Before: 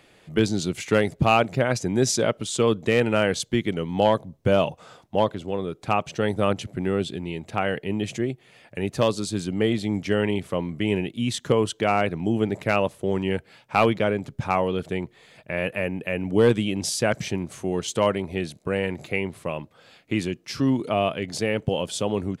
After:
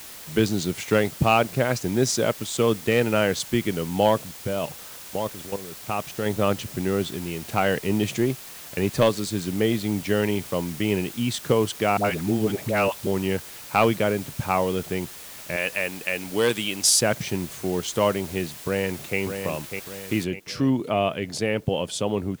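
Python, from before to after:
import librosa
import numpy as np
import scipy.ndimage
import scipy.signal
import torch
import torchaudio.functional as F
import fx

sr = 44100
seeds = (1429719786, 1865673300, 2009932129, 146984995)

y = fx.law_mismatch(x, sr, coded='A', at=(0.97, 3.13))
y = fx.level_steps(y, sr, step_db=13, at=(4.27, 6.26))
y = fx.leveller(y, sr, passes=1, at=(7.42, 9.09))
y = fx.dispersion(y, sr, late='highs', ms=77.0, hz=600.0, at=(11.97, 13.07))
y = fx.tilt_eq(y, sr, slope=3.5, at=(15.56, 17.01))
y = fx.echo_throw(y, sr, start_s=18.56, length_s=0.63, ms=600, feedback_pct=45, wet_db=-7.0)
y = fx.noise_floor_step(y, sr, seeds[0], at_s=20.24, before_db=-41, after_db=-59, tilt_db=0.0)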